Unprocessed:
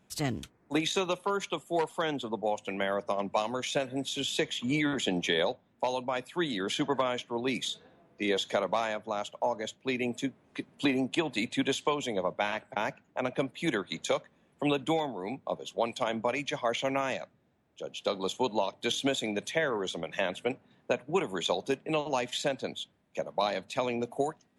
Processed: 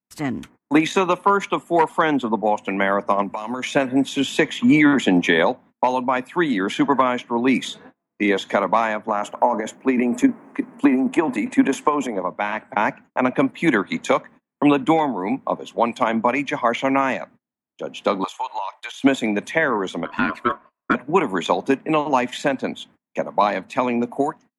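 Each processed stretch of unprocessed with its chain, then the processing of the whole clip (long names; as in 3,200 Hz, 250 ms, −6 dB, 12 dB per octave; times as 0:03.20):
0:03.23–0:03.63: floating-point word with a short mantissa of 6 bits + parametric band 10,000 Hz +7 dB 1.4 octaves + downward compressor 8 to 1, threshold −36 dBFS
0:09.08–0:12.22: high-pass filter 210 Hz + parametric band 3,700 Hz −13.5 dB 1.2 octaves + transient designer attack +6 dB, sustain +12 dB
0:18.24–0:19.04: high-pass filter 780 Hz 24 dB per octave + downward compressor 12 to 1, threshold −35 dBFS
0:20.05–0:20.95: high-shelf EQ 5,300 Hz −8 dB + ring modulation 840 Hz
whole clip: noise gate −53 dBFS, range −32 dB; octave-band graphic EQ 250/1,000/2,000/4,000 Hz +12/+10/+8/−5 dB; automatic gain control; level −3 dB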